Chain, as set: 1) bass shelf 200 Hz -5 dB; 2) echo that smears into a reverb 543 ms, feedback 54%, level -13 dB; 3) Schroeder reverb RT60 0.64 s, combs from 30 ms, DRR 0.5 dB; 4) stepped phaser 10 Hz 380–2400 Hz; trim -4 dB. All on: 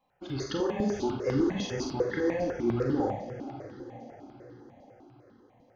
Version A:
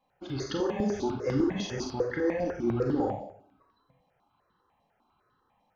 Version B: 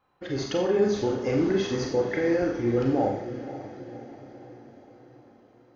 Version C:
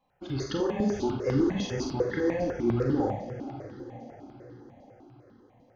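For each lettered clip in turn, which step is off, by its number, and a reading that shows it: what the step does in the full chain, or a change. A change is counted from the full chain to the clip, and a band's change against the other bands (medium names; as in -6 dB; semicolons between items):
2, momentary loudness spread change -10 LU; 4, 500 Hz band +2.5 dB; 1, 125 Hz band +3.0 dB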